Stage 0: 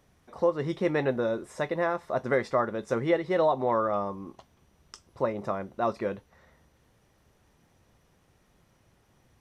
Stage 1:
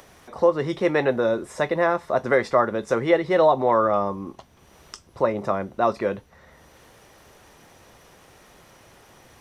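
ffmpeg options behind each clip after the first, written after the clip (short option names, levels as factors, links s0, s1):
-filter_complex "[0:a]acrossover=split=330[s0][s1];[s0]alimiter=level_in=2.99:limit=0.0631:level=0:latency=1,volume=0.335[s2];[s1]acompressor=mode=upward:threshold=0.00355:ratio=2.5[s3];[s2][s3]amix=inputs=2:normalize=0,volume=2.24"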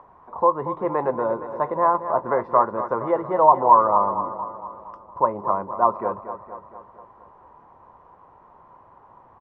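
-filter_complex "[0:a]lowpass=f=1000:t=q:w=8.4,asplit=2[s0][s1];[s1]aecho=0:1:232|464|696|928|1160|1392:0.282|0.161|0.0916|0.0522|0.0298|0.017[s2];[s0][s2]amix=inputs=2:normalize=0,volume=0.501"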